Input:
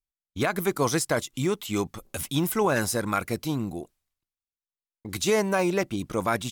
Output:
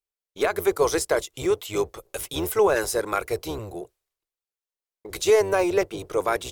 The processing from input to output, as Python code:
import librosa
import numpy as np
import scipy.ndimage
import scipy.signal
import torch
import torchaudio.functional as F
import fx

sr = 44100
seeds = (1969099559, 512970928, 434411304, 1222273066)

y = fx.octave_divider(x, sr, octaves=1, level_db=0.0)
y = fx.low_shelf_res(y, sr, hz=310.0, db=-9.5, q=3.0)